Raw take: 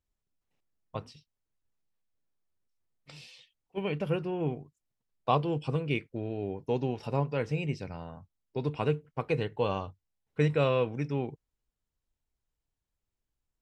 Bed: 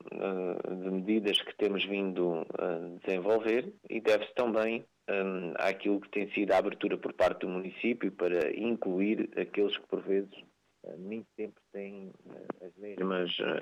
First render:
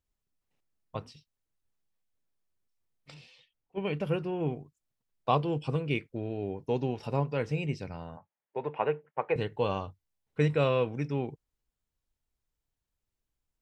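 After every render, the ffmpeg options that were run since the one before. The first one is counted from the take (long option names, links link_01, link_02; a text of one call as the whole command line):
ffmpeg -i in.wav -filter_complex "[0:a]asettb=1/sr,asplit=3[link_01][link_02][link_03];[link_01]atrim=end=3.144[link_04];[link_02]atrim=start=3.14:end=3.85,asetpts=PTS-STARTPTS,afade=type=in:duration=0.004:curve=qsin,afade=type=out:start_time=0.706:duration=0.004:curve=qsin,aemphasis=mode=reproduction:type=75kf[link_05];[link_03]atrim=start=3.846[link_06];[link_04][link_05]acrossfade=duration=0.004:curve1=hsin:curve2=qsin[link_07];[link_07][link_06]acrossfade=duration=0.004:curve1=qsin:curve2=hsin,asettb=1/sr,asplit=3[link_08][link_09][link_10];[link_08]atrim=end=8.174[link_11];[link_09]atrim=start=8.17:end=9.36,asetpts=PTS-STARTPTS,afade=type=in:duration=0.004:curve=qsin,afade=type=out:start_time=1.186:duration=0.004:curve=qsin,highpass=260,equalizer=frequency=270:width_type=q:width=4:gain=-10,equalizer=frequency=570:width_type=q:width=4:gain=5,equalizer=frequency=870:width_type=q:width=4:gain=8,equalizer=frequency=1800:width_type=q:width=4:gain=6,lowpass=frequency=2600:width=0.5412,lowpass=frequency=2600:width=1.3066[link_12];[link_10]atrim=start=9.356[link_13];[link_11][link_12]acrossfade=duration=0.004:curve1=hsin:curve2=qsin[link_14];[link_14][link_13]acrossfade=duration=0.004:curve1=qsin:curve2=hsin" out.wav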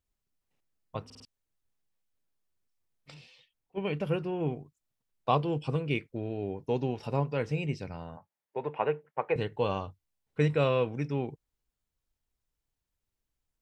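ffmpeg -i in.wav -filter_complex "[0:a]asplit=5[link_01][link_02][link_03][link_04][link_05];[link_01]atrim=end=1.102[link_06];[link_02]atrim=start=1.048:end=1.102[link_07];[link_03]atrim=start=1.048:end=1.102[link_08];[link_04]atrim=start=1.048:end=1.102[link_09];[link_05]atrim=start=1.248[link_10];[link_06][link_07]acrossfade=duration=0.004:curve1=hsin:curve2=hsin[link_11];[link_11][link_08]acrossfade=duration=0.004:curve1=hsin:curve2=hsin[link_12];[link_12][link_09]acrossfade=duration=0.004:curve1=hsin:curve2=hsin[link_13];[link_13][link_10]acrossfade=duration=0.004:curve1=hsin:curve2=hsin" out.wav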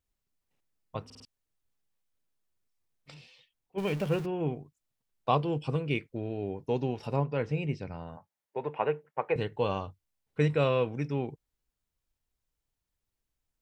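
ffmpeg -i in.wav -filter_complex "[0:a]asettb=1/sr,asplit=3[link_01][link_02][link_03];[link_01]atrim=end=3.784[link_04];[link_02]atrim=start=3.78:end=4.26,asetpts=PTS-STARTPTS,afade=type=in:duration=0.004:curve=qsin,afade=type=out:start_time=0.476:duration=0.004:curve=qsin,aeval=exprs='val(0)+0.5*0.0126*sgn(val(0))':channel_layout=same[link_05];[link_03]atrim=start=4.256[link_06];[link_04][link_05]acrossfade=duration=0.004:curve1=hsin:curve2=qsin[link_07];[link_07][link_06]acrossfade=duration=0.004:curve1=qsin:curve2=hsin,asettb=1/sr,asplit=3[link_08][link_09][link_10];[link_08]atrim=end=7.164[link_11];[link_09]atrim=start=7.16:end=8.07,asetpts=PTS-STARTPTS,afade=type=in:duration=0.004:curve=qsin,afade=type=out:start_time=0.906:duration=0.004:curve=qsin,aemphasis=mode=reproduction:type=50fm[link_12];[link_10]atrim=start=8.066[link_13];[link_11][link_12]acrossfade=duration=0.004:curve1=hsin:curve2=qsin[link_14];[link_14][link_13]acrossfade=duration=0.004:curve1=qsin:curve2=hsin" out.wav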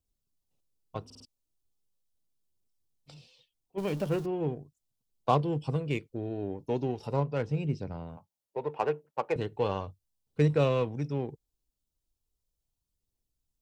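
ffmpeg -i in.wav -filter_complex "[0:a]aphaser=in_gain=1:out_gain=1:delay=3.6:decay=0.22:speed=0.38:type=triangular,acrossover=split=400|2700[link_01][link_02][link_03];[link_02]adynamicsmooth=sensitivity=5.5:basefreq=1000[link_04];[link_01][link_04][link_03]amix=inputs=3:normalize=0" out.wav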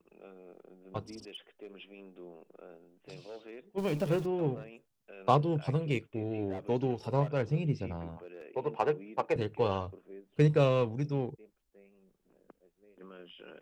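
ffmpeg -i in.wav -i bed.wav -filter_complex "[1:a]volume=-19dB[link_01];[0:a][link_01]amix=inputs=2:normalize=0" out.wav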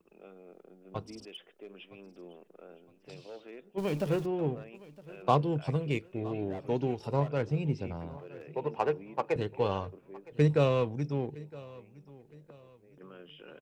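ffmpeg -i in.wav -af "aecho=1:1:963|1926|2889:0.0944|0.033|0.0116" out.wav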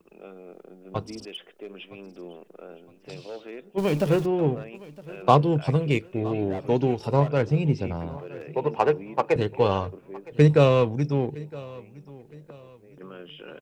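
ffmpeg -i in.wav -af "volume=8dB" out.wav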